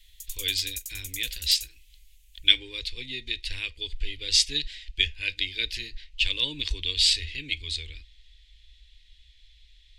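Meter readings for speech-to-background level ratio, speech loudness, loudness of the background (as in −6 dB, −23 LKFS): 10.5 dB, −26.5 LKFS, −37.0 LKFS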